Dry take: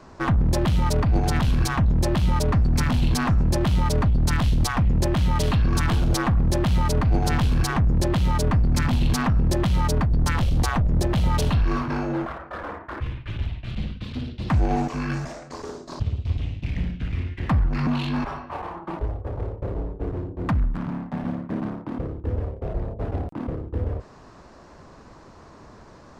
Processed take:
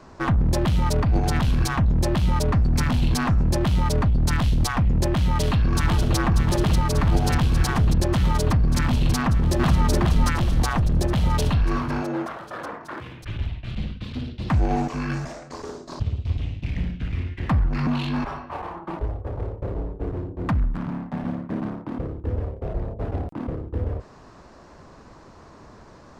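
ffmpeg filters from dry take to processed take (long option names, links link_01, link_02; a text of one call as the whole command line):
ffmpeg -i in.wav -filter_complex "[0:a]asplit=2[link_01][link_02];[link_02]afade=type=in:start_time=5.19:duration=0.01,afade=type=out:start_time=6.16:duration=0.01,aecho=0:1:590|1180|1770|2360|2950|3540|4130|4720|5310|5900|6490|7080:0.473151|0.402179|0.341852|0.290574|0.246988|0.20994|0.178449|0.151681|0.128929|0.10959|0.0931514|0.0791787[link_03];[link_01][link_03]amix=inputs=2:normalize=0,asplit=2[link_04][link_05];[link_05]afade=type=in:start_time=9.17:duration=0.01,afade=type=out:start_time=9.87:duration=0.01,aecho=0:1:420|840|1260|1680:0.841395|0.252419|0.0757256|0.0227177[link_06];[link_04][link_06]amix=inputs=2:normalize=0,asettb=1/sr,asplit=3[link_07][link_08][link_09];[link_07]atrim=end=12.024[link_10];[link_08]atrim=start=12.02:end=13.23,asetpts=PTS-STARTPTS,afade=type=in:duration=0.004:curve=qsin,afade=type=out:start_time=1.206:duration=0.004:curve=qsin,highpass=180[link_11];[link_09]atrim=start=13.226[link_12];[link_10][link_11]acrossfade=duration=0.004:curve1=hsin:curve2=qsin[link_13];[link_13][link_12]acrossfade=duration=0.004:curve1=qsin:curve2=hsin" out.wav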